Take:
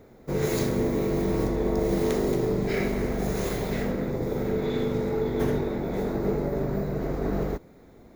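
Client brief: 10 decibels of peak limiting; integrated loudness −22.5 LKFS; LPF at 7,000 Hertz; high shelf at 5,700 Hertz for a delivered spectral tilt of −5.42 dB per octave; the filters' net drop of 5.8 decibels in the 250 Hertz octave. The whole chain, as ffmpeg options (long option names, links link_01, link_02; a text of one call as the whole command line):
ffmpeg -i in.wav -af "lowpass=7000,equalizer=frequency=250:width_type=o:gain=-8.5,highshelf=frequency=5700:gain=-5.5,volume=12.5dB,alimiter=limit=-13.5dB:level=0:latency=1" out.wav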